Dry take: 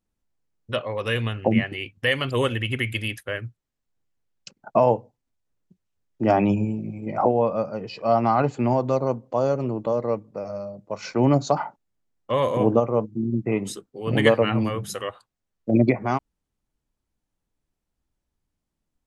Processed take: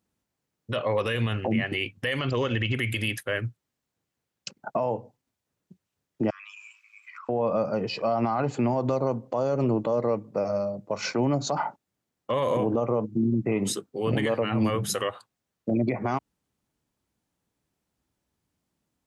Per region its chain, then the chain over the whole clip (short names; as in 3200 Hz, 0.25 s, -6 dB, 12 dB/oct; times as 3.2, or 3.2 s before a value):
2.19–2.75 high shelf 7800 Hz -9.5 dB + careless resampling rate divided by 3×, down none, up filtered
6.3–7.29 steep high-pass 1100 Hz 96 dB/oct + compressor, threshold -46 dBFS
whole clip: HPF 93 Hz; compressor, threshold -21 dBFS; limiter -21.5 dBFS; gain +5 dB